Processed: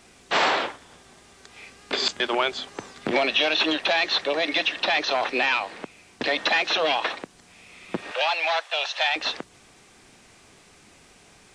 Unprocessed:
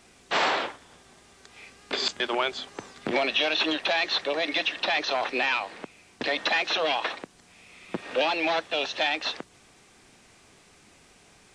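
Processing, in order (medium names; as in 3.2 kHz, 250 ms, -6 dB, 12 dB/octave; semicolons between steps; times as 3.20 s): 8.11–9.16 s: high-pass 640 Hz 24 dB/octave; trim +3 dB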